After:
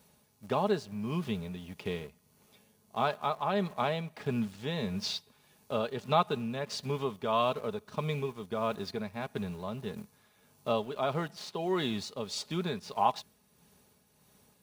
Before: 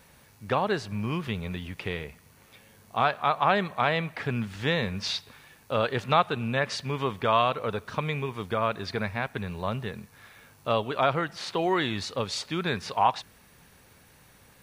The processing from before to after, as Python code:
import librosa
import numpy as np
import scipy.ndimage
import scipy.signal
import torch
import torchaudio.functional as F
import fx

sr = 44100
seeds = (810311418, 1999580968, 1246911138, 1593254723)

p1 = scipy.signal.sosfilt(scipy.signal.butter(2, 76.0, 'highpass', fs=sr, output='sos'), x)
p2 = fx.peak_eq(p1, sr, hz=1800.0, db=-9.5, octaves=1.3)
p3 = p2 + 0.44 * np.pad(p2, (int(4.8 * sr / 1000.0), 0))[:len(p2)]
p4 = np.where(np.abs(p3) >= 10.0 ** (-38.0 / 20.0), p3, 0.0)
p5 = p3 + (p4 * librosa.db_to_amplitude(-5.5))
p6 = p5 * (1.0 - 0.46 / 2.0 + 0.46 / 2.0 * np.cos(2.0 * np.pi * 1.6 * (np.arange(len(p5)) / sr)))
y = p6 * librosa.db_to_amplitude(-5.5)